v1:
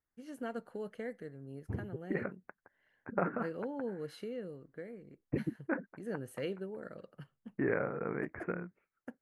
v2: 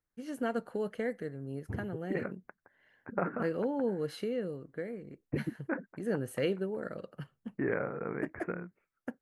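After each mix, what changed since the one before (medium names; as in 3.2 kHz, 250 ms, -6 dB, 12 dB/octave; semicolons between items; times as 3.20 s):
first voice +7.0 dB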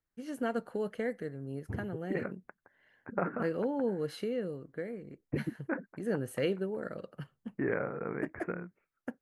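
no change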